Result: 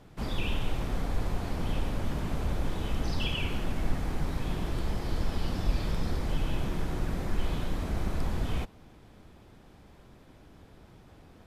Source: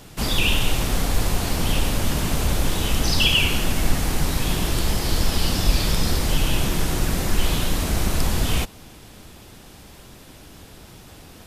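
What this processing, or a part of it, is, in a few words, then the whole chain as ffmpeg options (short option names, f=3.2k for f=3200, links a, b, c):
through cloth: -af "highshelf=f=3.5k:g=-17,bandreject=f=2.8k:w=25,volume=-8.5dB"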